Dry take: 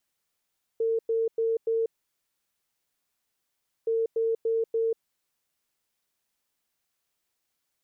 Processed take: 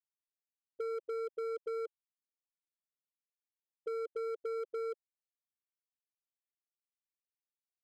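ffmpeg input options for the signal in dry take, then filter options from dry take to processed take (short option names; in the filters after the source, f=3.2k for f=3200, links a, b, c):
-f lavfi -i "aevalsrc='0.075*sin(2*PI*453*t)*clip(min(mod(mod(t,3.07),0.29),0.19-mod(mod(t,3.07),0.29))/0.005,0,1)*lt(mod(t,3.07),1.16)':d=6.14:s=44100"
-af "afftfilt=real='re*gte(hypot(re,im),0.178)':imag='im*gte(hypot(re,im),0.178)':win_size=1024:overlap=0.75,asoftclip=type=hard:threshold=-29.5dB,acompressor=threshold=-37dB:ratio=6"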